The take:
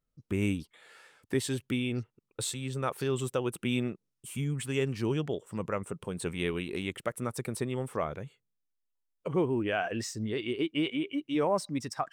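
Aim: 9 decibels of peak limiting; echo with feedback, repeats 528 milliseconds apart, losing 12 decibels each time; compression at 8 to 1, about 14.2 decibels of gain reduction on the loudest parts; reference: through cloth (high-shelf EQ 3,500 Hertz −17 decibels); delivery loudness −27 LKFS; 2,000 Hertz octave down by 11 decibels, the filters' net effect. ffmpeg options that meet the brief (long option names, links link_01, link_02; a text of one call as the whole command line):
ffmpeg -i in.wav -af "equalizer=frequency=2000:width_type=o:gain=-9,acompressor=threshold=-40dB:ratio=8,alimiter=level_in=12.5dB:limit=-24dB:level=0:latency=1,volume=-12.5dB,highshelf=frequency=3500:gain=-17,aecho=1:1:528|1056|1584:0.251|0.0628|0.0157,volume=20dB" out.wav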